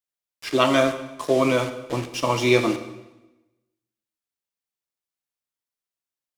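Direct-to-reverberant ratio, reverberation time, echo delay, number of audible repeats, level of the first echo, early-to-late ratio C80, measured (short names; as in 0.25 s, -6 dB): 8.5 dB, 1.0 s, none, none, none, 13.0 dB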